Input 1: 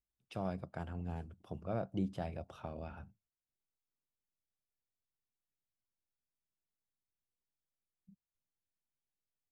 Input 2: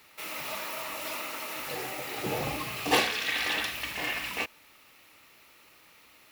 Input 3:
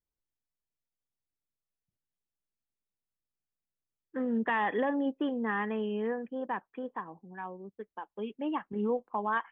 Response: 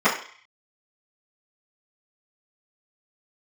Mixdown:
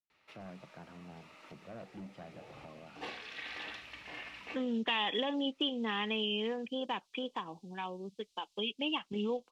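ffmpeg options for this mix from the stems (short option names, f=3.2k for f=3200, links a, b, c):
-filter_complex "[0:a]highpass=f=150:w=0.5412,highpass=f=150:w=1.3066,asoftclip=type=tanh:threshold=-37dB,volume=-5dB,asplit=2[a][b];[1:a]adelay=100,volume=-13dB[c];[2:a]aexciter=amount=13.1:drive=9.3:freq=2.8k,adelay=400,volume=2dB[d];[b]apad=whole_len=283038[e];[c][e]sidechaincompress=threshold=-56dB:ratio=8:attack=5.8:release=645[f];[a][f][d]amix=inputs=3:normalize=0,lowpass=4.2k,acompressor=threshold=-36dB:ratio=2"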